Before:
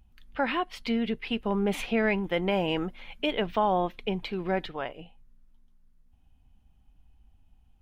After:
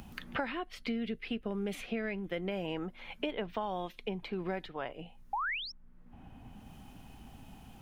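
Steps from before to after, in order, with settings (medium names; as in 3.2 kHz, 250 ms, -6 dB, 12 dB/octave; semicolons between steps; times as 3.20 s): 0.53–2.65 s: peaking EQ 910 Hz -13.5 dB 0.35 oct; 5.33–5.72 s: painted sound rise 770–5700 Hz -32 dBFS; peaking EQ 3 kHz -2 dB; three bands compressed up and down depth 100%; trim -8.5 dB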